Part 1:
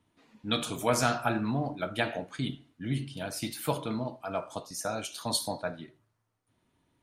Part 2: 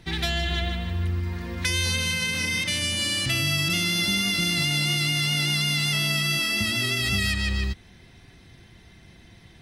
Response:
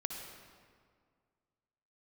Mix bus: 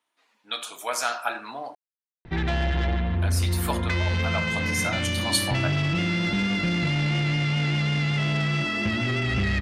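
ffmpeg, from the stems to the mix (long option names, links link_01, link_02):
-filter_complex "[0:a]highpass=790,volume=0dB,asplit=3[link_01][link_02][link_03];[link_01]atrim=end=1.75,asetpts=PTS-STARTPTS,afade=type=out:start_time=1.746:duration=0.004:curve=hsin[link_04];[link_02]atrim=start=1.75:end=3.22,asetpts=PTS-STARTPTS,volume=0[link_05];[link_03]atrim=start=3.22,asetpts=PTS-STARTPTS,afade=type=in:duration=0.004:curve=hsin[link_06];[link_04][link_05][link_06]concat=n=3:v=0:a=1[link_07];[1:a]lowpass=1700,asoftclip=type=tanh:threshold=-26.5dB,adelay=2250,volume=1dB[link_08];[link_07][link_08]amix=inputs=2:normalize=0,dynaudnorm=framelen=260:gausssize=9:maxgain=6dB"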